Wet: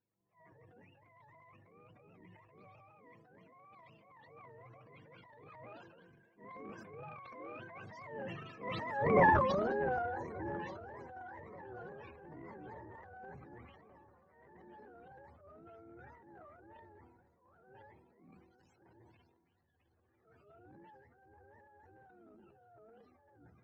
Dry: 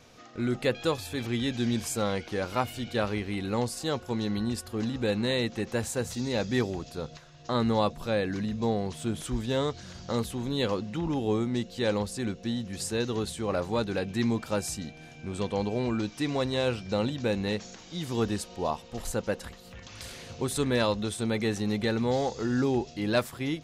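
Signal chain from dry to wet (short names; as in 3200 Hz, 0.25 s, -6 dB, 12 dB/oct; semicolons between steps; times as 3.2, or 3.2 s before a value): spectrum mirrored in octaves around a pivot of 450 Hz; Doppler pass-by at 9.2, 51 m/s, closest 5.2 m; low shelf 120 Hz -5.5 dB; notches 60/120/180 Hz; transient shaper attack 0 dB, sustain +12 dB; air absorption 180 m; darkening echo 1.182 s, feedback 55%, low-pass 2300 Hz, level -22 dB; transient shaper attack -9 dB, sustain +8 dB; gain +8 dB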